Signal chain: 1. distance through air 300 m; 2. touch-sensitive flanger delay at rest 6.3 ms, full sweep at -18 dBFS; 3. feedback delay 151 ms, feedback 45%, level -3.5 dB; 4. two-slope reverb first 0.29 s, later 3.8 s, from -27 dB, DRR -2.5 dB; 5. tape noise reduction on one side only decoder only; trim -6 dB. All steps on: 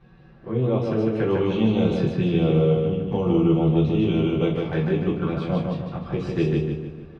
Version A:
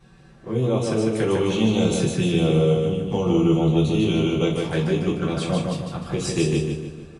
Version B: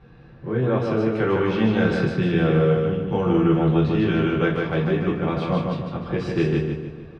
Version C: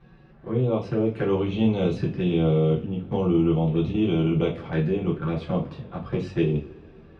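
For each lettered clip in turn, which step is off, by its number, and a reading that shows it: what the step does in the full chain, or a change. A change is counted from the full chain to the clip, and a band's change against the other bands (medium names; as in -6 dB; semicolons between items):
1, 4 kHz band +6.5 dB; 2, 2 kHz band +7.0 dB; 3, loudness change -2.0 LU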